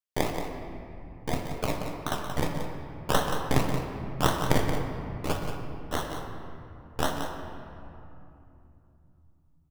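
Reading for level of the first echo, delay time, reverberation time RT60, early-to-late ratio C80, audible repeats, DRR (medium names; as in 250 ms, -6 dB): -9.0 dB, 178 ms, 2.9 s, 3.5 dB, 1, 1.5 dB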